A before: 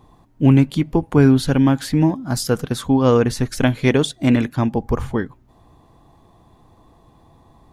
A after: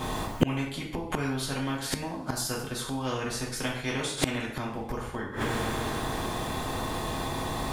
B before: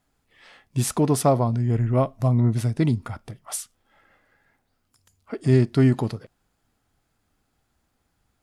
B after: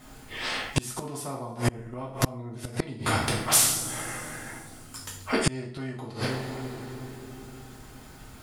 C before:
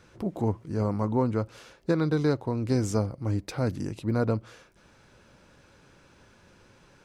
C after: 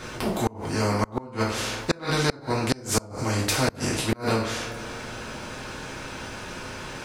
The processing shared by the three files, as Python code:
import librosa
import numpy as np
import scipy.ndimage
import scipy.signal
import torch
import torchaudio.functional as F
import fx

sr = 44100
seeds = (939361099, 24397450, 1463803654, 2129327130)

y = fx.rev_double_slope(x, sr, seeds[0], early_s=0.47, late_s=3.0, knee_db=-27, drr_db=-4.5)
y = fx.gate_flip(y, sr, shuts_db=-11.0, range_db=-33)
y = fx.spectral_comp(y, sr, ratio=2.0)
y = y * librosa.db_to_amplitude(4.0)